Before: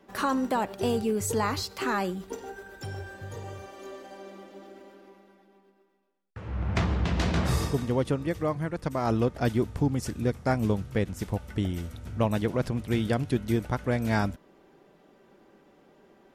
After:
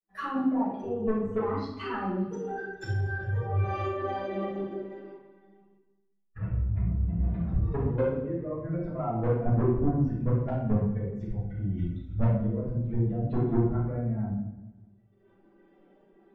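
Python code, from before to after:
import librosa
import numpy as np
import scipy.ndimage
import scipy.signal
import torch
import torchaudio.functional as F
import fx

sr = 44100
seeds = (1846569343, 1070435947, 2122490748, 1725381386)

y = fx.bin_expand(x, sr, power=2.0)
y = fx.recorder_agc(y, sr, target_db=-24.5, rise_db_per_s=28.0, max_gain_db=30)
y = fx.env_lowpass_down(y, sr, base_hz=470.0, full_db=-25.5)
y = fx.lowpass(y, sr, hz=1200.0, slope=6)
y = fx.low_shelf(y, sr, hz=140.0, db=-6.0)
y = fx.level_steps(y, sr, step_db=15)
y = 10.0 ** (-32.0 / 20.0) * np.tanh(y / 10.0 ** (-32.0 / 20.0))
y = fx.echo_feedback(y, sr, ms=200, feedback_pct=42, wet_db=-20.0)
y = fx.room_shoebox(y, sr, seeds[0], volume_m3=210.0, walls='mixed', distance_m=5.9)
y = y * librosa.db_to_amplitude(-1.5)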